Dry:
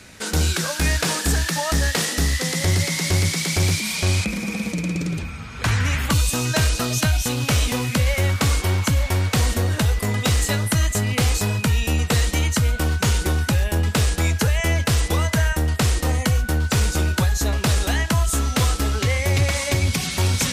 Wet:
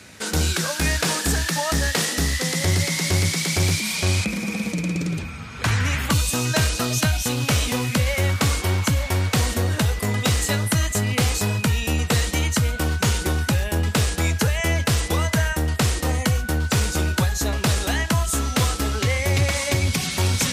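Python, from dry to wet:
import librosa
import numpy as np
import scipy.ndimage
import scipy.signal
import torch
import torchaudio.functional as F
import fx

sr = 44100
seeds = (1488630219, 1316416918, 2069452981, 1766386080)

y = scipy.signal.sosfilt(scipy.signal.butter(2, 71.0, 'highpass', fs=sr, output='sos'), x)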